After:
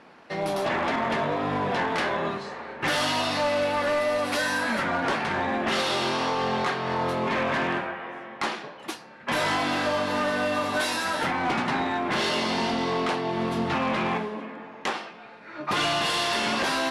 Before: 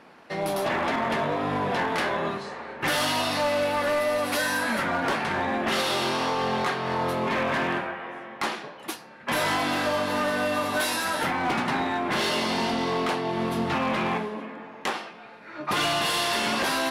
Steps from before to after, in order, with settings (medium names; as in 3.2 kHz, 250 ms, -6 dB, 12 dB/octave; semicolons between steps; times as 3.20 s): low-pass 8.5 kHz 12 dB/octave